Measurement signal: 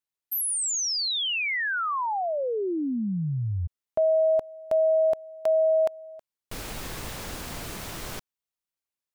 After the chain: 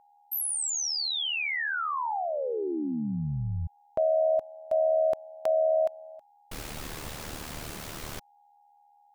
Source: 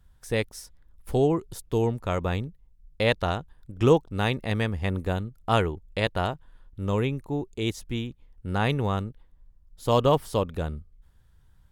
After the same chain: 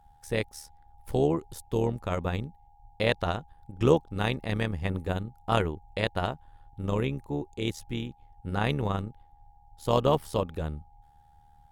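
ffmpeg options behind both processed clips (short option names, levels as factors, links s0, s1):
-af "aeval=exprs='val(0)+0.00158*sin(2*PI*820*n/s)':c=same,tremolo=f=75:d=0.621"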